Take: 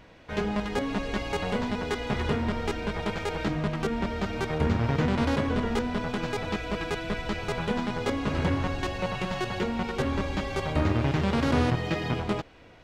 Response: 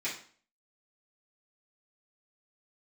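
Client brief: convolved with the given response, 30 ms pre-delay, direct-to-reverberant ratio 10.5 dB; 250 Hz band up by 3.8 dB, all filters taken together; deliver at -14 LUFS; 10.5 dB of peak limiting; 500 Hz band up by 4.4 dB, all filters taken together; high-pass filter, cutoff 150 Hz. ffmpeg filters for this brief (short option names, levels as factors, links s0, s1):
-filter_complex "[0:a]highpass=150,equalizer=f=250:t=o:g=4.5,equalizer=f=500:t=o:g=4,alimiter=limit=0.119:level=0:latency=1,asplit=2[s0][s1];[1:a]atrim=start_sample=2205,adelay=30[s2];[s1][s2]afir=irnorm=-1:irlink=0,volume=0.158[s3];[s0][s3]amix=inputs=2:normalize=0,volume=5.31"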